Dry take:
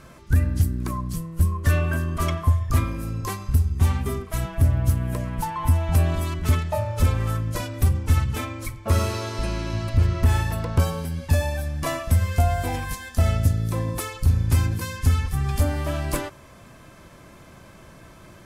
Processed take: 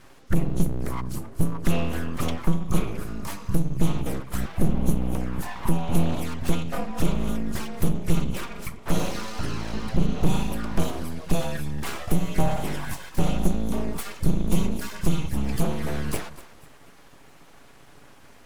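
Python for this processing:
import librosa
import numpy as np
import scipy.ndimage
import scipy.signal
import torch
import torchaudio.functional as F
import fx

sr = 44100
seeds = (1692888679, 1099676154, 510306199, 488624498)

y = fx.echo_feedback(x, sr, ms=244, feedback_pct=38, wet_db=-16)
y = fx.env_flanger(y, sr, rest_ms=8.9, full_db=-19.0)
y = np.abs(y)
y = F.gain(torch.from_numpy(y), 1.0).numpy()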